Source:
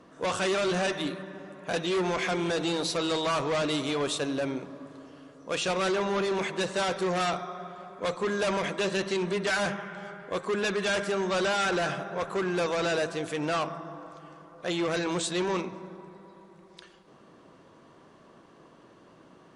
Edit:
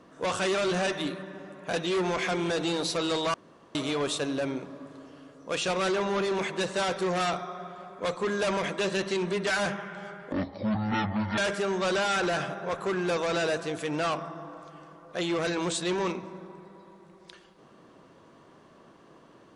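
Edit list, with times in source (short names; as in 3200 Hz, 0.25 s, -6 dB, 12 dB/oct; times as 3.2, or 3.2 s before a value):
3.34–3.75 room tone
10.32–10.87 speed 52%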